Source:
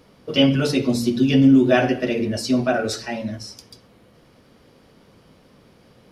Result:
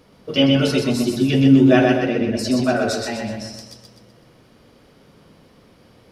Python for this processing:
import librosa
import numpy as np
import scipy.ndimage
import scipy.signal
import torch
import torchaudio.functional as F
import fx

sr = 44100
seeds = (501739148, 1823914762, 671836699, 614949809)

p1 = fx.lowpass(x, sr, hz=2900.0, slope=6, at=(1.98, 2.39))
y = p1 + fx.echo_feedback(p1, sr, ms=125, feedback_pct=45, wet_db=-4.0, dry=0)